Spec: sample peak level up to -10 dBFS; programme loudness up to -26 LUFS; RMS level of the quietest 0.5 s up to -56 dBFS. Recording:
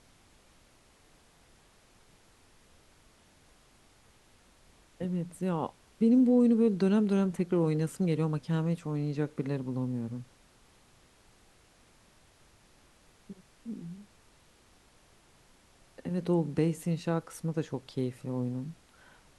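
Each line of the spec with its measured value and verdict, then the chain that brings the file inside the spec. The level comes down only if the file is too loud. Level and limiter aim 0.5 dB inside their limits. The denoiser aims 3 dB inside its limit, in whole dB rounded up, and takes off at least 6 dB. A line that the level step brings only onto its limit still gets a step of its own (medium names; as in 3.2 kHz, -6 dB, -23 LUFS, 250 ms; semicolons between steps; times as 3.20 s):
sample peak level -15.5 dBFS: pass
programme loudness -30.0 LUFS: pass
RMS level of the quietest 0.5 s -62 dBFS: pass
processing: none needed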